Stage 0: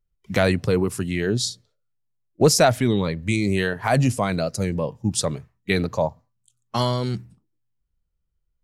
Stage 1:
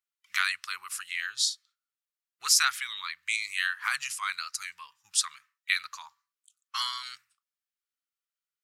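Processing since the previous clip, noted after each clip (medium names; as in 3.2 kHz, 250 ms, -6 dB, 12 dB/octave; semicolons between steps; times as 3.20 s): elliptic high-pass 1.2 kHz, stop band 50 dB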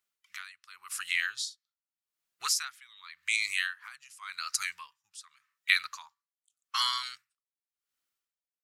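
in parallel at +3 dB: compression, threshold -36 dBFS, peak gain reduction 17 dB; on the sum: logarithmic tremolo 0.87 Hz, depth 24 dB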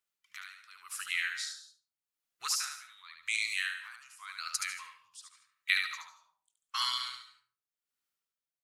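feedback delay 73 ms, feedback 18%, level -5 dB; algorithmic reverb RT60 0.53 s, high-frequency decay 0.35×, pre-delay 115 ms, DRR 13 dB; trim -4 dB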